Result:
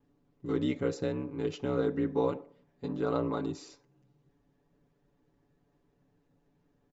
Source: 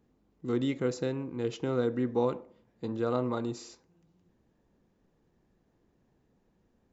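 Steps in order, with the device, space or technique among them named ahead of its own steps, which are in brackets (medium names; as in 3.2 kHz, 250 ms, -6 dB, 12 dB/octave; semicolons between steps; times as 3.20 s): distance through air 50 m; ring-modulated robot voice (ring modulator 33 Hz; comb 7 ms, depth 89%)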